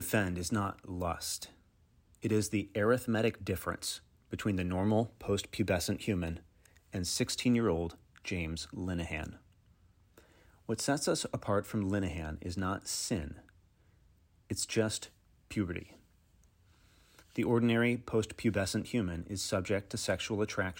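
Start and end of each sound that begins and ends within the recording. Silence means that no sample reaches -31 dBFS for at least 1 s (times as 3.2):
10.7–13.2
14.51–15.79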